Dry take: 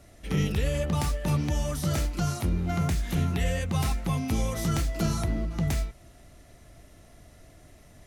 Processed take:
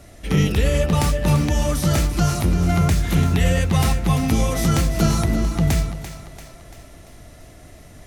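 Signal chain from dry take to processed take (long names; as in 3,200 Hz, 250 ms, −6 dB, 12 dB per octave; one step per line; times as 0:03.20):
echo with a time of its own for lows and highs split 390 Hz, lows 159 ms, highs 341 ms, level −10.5 dB
level +8.5 dB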